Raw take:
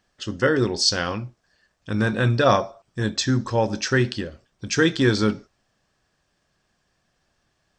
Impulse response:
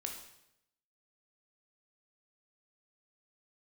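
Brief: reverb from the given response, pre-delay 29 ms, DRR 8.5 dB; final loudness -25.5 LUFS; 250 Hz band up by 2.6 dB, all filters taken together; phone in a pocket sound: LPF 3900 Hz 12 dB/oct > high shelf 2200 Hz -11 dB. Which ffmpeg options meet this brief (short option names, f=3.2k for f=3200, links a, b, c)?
-filter_complex "[0:a]equalizer=f=250:t=o:g=3.5,asplit=2[a][b];[1:a]atrim=start_sample=2205,adelay=29[c];[b][c]afir=irnorm=-1:irlink=0,volume=-7.5dB[d];[a][d]amix=inputs=2:normalize=0,lowpass=3.9k,highshelf=f=2.2k:g=-11,volume=-3.5dB"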